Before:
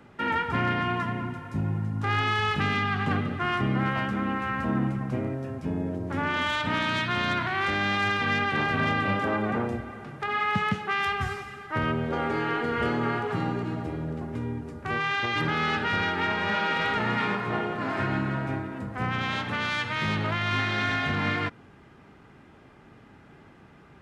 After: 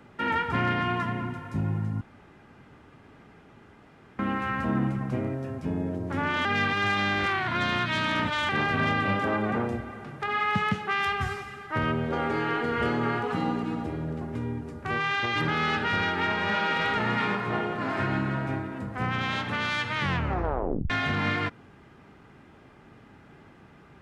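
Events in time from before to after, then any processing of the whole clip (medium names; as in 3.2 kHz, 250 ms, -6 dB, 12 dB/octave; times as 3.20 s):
2.01–4.19 s: room tone
6.45–8.49 s: reverse
13.23–13.86 s: comb 4 ms, depth 60%
19.97 s: tape stop 0.93 s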